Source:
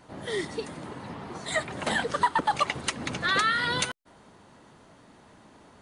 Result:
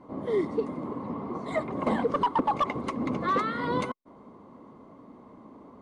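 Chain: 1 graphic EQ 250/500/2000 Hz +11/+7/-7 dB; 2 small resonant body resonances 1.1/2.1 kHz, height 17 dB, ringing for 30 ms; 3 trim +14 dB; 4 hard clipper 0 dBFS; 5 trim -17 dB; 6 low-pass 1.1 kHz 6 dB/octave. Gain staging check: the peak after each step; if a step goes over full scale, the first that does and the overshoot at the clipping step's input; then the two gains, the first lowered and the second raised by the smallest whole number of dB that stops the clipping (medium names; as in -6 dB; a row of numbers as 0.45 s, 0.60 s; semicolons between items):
-8.5 dBFS, -4.0 dBFS, +10.0 dBFS, 0.0 dBFS, -17.0 dBFS, -17.0 dBFS; step 3, 10.0 dB; step 3 +4 dB, step 5 -7 dB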